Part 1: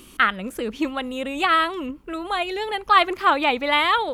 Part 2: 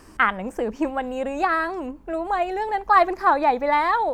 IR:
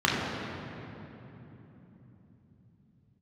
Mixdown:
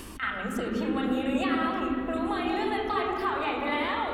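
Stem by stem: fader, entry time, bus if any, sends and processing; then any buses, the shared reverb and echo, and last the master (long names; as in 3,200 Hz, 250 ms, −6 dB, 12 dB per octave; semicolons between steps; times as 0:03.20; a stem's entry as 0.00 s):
+2.5 dB, 0.00 s, send −21 dB, parametric band 69 Hz +15 dB 0.65 octaves; downward compressor, threshold −25 dBFS, peak gain reduction 14 dB; automatic ducking −10 dB, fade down 0.20 s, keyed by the second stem
+2.0 dB, 0.00 s, polarity flipped, no send, brickwall limiter −14.5 dBFS, peak gain reduction 9 dB; downward compressor, threshold −32 dBFS, peak gain reduction 12.5 dB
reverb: on, RT60 3.5 s, pre-delay 7 ms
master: level that may rise only so fast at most 260 dB per second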